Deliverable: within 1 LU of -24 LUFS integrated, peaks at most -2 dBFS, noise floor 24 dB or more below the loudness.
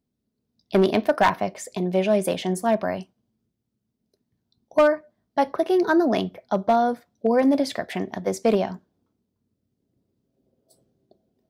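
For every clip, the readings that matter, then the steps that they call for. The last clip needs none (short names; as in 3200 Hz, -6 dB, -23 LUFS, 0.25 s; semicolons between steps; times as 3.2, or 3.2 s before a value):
clipped 0.3%; flat tops at -11.0 dBFS; loudness -23.0 LUFS; peak -11.0 dBFS; loudness target -24.0 LUFS
-> clip repair -11 dBFS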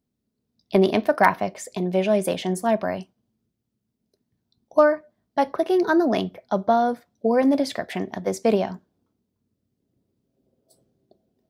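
clipped 0.0%; loudness -22.5 LUFS; peak -2.5 dBFS; loudness target -24.0 LUFS
-> gain -1.5 dB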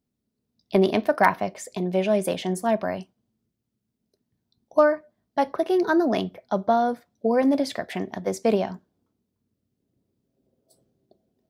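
loudness -24.0 LUFS; peak -4.0 dBFS; noise floor -80 dBFS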